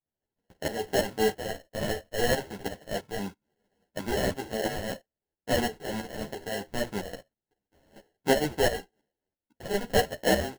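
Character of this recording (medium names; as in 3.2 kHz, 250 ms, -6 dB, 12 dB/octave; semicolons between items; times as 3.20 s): tremolo saw up 3 Hz, depth 70%; aliases and images of a low sample rate 1.2 kHz, jitter 0%; a shimmering, thickened sound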